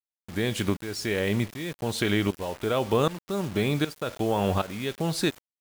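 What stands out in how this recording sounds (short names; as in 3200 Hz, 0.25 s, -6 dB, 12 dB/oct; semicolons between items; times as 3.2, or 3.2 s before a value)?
tremolo saw up 1.3 Hz, depth 85%; a quantiser's noise floor 8-bit, dither none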